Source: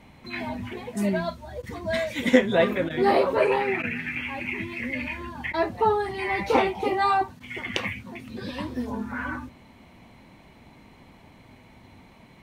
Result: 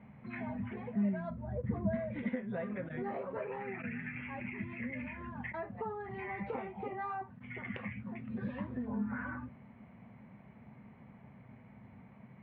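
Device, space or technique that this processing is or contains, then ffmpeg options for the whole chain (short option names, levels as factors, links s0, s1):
bass amplifier: -filter_complex "[0:a]acompressor=threshold=0.0316:ratio=5,highpass=70,equalizer=f=130:t=q:w=4:g=9,equalizer=f=210:t=q:w=4:g=9,equalizer=f=320:t=q:w=4:g=-9,equalizer=f=940:t=q:w=4:g=-3,lowpass=f=2100:w=0.5412,lowpass=f=2100:w=1.3066,asettb=1/sr,asplit=3[s0][s1][s2];[s0]atrim=end=1.304[s3];[s1]atrim=start=1.3:end=2.19,asetpts=PTS-STARTPTS,afade=t=in:d=0.004:c=qsin,afade=t=out:st=0.886:d=0.004:c=qsin,tiltshelf=f=940:g=8[s4];[s2]atrim=start=2.186[s5];[s3][s4]acrossfade=d=0.004:c1=hsin:c2=qsin[s6];[s6][s5]acrossfade=d=0.004:c1=qsin:c2=hsin,volume=0.473"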